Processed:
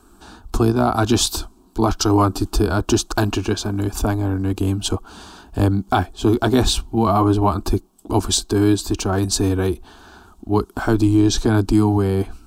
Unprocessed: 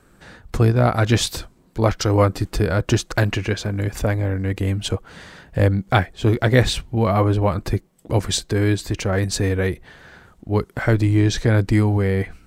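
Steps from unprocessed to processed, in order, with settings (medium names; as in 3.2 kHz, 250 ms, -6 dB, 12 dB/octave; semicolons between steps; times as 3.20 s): static phaser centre 530 Hz, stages 6; loudness maximiser +11.5 dB; trim -5 dB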